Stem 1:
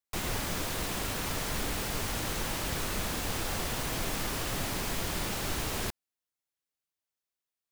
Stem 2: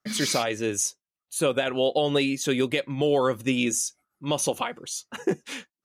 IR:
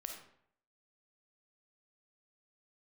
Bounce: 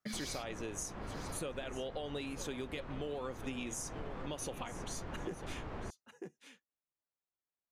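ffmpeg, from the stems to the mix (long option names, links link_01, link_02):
-filter_complex "[0:a]lowpass=1400,volume=-2.5dB[link_01];[1:a]volume=-5.5dB,asplit=2[link_02][link_03];[link_03]volume=-16.5dB,aecho=0:1:945:1[link_04];[link_01][link_02][link_04]amix=inputs=3:normalize=0,acompressor=threshold=-39dB:ratio=5"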